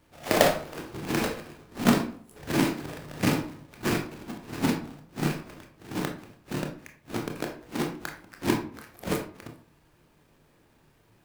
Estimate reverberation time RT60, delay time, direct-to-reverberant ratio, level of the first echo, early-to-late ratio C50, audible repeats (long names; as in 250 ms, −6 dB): 0.50 s, no echo audible, 3.0 dB, no echo audible, 8.5 dB, no echo audible